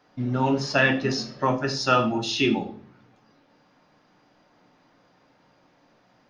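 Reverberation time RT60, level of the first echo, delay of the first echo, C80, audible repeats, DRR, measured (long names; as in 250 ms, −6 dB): 0.45 s, no echo audible, no echo audible, 16.5 dB, no echo audible, 4.5 dB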